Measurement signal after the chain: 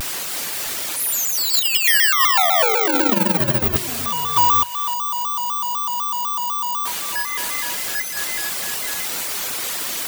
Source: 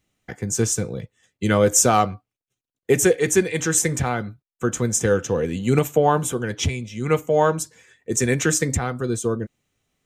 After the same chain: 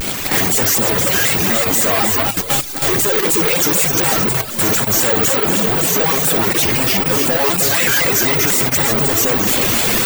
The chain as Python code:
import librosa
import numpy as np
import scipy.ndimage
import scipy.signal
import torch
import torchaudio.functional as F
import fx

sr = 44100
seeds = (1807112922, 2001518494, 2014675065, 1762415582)

p1 = np.sign(x) * np.sqrt(np.mean(np.square(x)))
p2 = fx.echo_multitap(p1, sr, ms=(61, 91, 156, 317, 567, 878), db=(-6.0, -16.5, -16.5, -4.5, -10.0, -8.5))
p3 = fx.level_steps(p2, sr, step_db=21)
p4 = p2 + (p3 * 10.0 ** (2.5 / 20.0))
p5 = (np.kron(scipy.signal.resample_poly(p4, 1, 2), np.eye(2)[0]) * 2)[:len(p4)]
p6 = fx.notch(p5, sr, hz=5800.0, q=26.0)
p7 = fx.dereverb_blind(p6, sr, rt60_s=0.57)
p8 = fx.low_shelf(p7, sr, hz=140.0, db=-8.5)
p9 = fx.hum_notches(p8, sr, base_hz=50, count=3)
p10 = fx.vibrato_shape(p9, sr, shape='square', rate_hz=4.0, depth_cents=160.0)
y = p10 * 10.0 ** (-1.5 / 20.0)